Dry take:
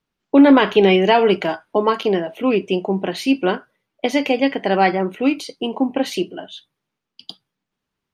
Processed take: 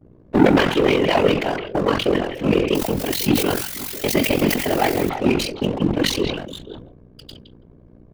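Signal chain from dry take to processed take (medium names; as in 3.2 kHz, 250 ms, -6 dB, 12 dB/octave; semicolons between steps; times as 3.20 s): 2.75–5.09 s: zero-crossing glitches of -18.5 dBFS; graphic EQ 125/250/1000/8000 Hz -9/+6/-6/-4 dB; AM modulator 45 Hz, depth 80%; bass shelf 180 Hz -6.5 dB; hum 60 Hz, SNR 21 dB; high-pass 43 Hz 24 dB/octave; waveshaping leveller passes 3; repeats whose band climbs or falls 165 ms, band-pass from 2.7 kHz, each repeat -1.4 oct, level -9.5 dB; whisper effect; decay stretcher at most 64 dB/s; trim -7.5 dB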